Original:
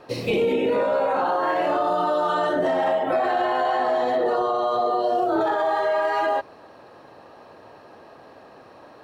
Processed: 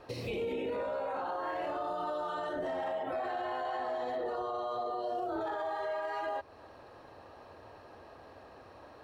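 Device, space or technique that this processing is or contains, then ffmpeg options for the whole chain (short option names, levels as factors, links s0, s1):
car stereo with a boomy subwoofer: -af "lowshelf=f=110:t=q:w=1.5:g=9,alimiter=limit=0.075:level=0:latency=1:release=227,volume=0.501"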